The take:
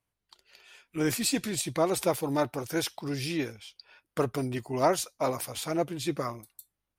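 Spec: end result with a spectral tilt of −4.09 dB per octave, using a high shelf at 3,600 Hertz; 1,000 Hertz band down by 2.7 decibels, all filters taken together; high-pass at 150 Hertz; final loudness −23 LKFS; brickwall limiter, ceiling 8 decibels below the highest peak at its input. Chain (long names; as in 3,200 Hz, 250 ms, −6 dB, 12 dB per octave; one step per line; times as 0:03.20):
high-pass filter 150 Hz
parametric band 1,000 Hz −3.5 dB
high-shelf EQ 3,600 Hz −3 dB
level +11 dB
brickwall limiter −11.5 dBFS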